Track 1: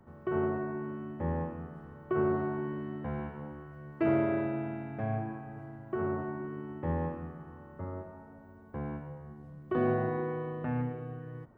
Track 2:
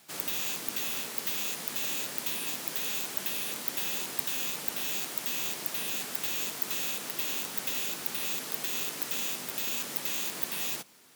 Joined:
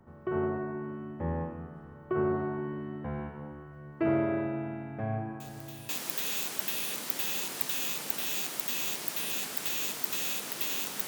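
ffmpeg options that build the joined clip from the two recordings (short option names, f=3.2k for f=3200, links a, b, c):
-filter_complex "[1:a]asplit=2[a][b];[0:a]apad=whole_dur=11.07,atrim=end=11.07,atrim=end=5.892[c];[b]atrim=start=2.468:end=7.65[d];[a]atrim=start=1.98:end=2.47,asetpts=PTS-STARTPTS,volume=-16dB,afade=t=in:d=0.004:c=hsin,afade=t=out:st=0.486:d=0.004:c=hsin,adelay=5400[e];[c][d]acrossfade=d=0.004:c1=hsin:c2=hsin[f];[f][e]amix=inputs=2:normalize=0"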